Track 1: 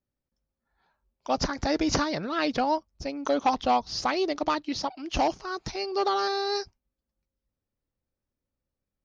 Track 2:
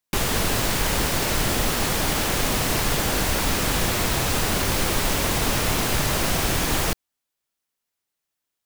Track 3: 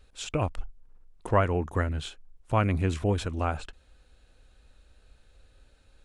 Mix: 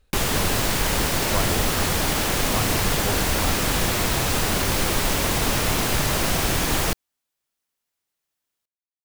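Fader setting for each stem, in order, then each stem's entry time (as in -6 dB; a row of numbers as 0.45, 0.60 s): off, +0.5 dB, -4.5 dB; off, 0.00 s, 0.00 s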